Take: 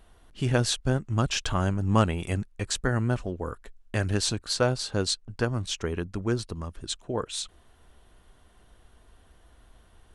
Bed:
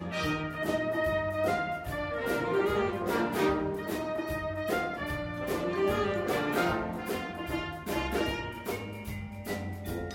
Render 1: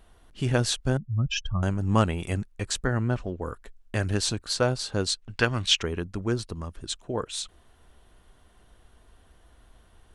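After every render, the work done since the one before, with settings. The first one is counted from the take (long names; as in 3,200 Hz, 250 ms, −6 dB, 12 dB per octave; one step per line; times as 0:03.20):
0:00.97–0:01.63: expanding power law on the bin magnitudes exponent 2.4
0:02.84–0:03.42: high-frequency loss of the air 73 metres
0:05.22–0:05.83: parametric band 2,700 Hz +13.5 dB 2.1 octaves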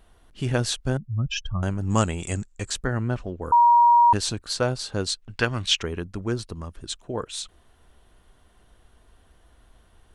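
0:01.90–0:02.70: low-pass with resonance 7,400 Hz, resonance Q 12
0:03.52–0:04.13: beep over 950 Hz −12 dBFS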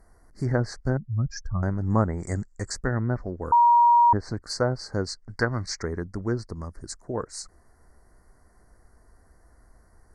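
elliptic band-stop filter 2,000–4,600 Hz, stop band 40 dB
treble cut that deepens with the level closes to 1,400 Hz, closed at −17.5 dBFS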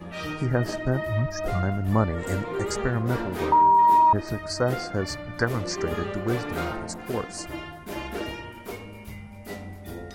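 mix in bed −2 dB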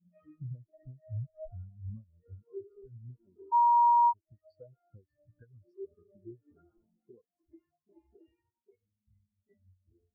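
downward compressor 6 to 1, threshold −31 dBFS, peak gain reduction 15 dB
every bin expanded away from the loudest bin 4 to 1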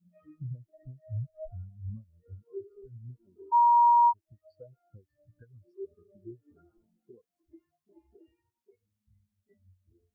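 level +2.5 dB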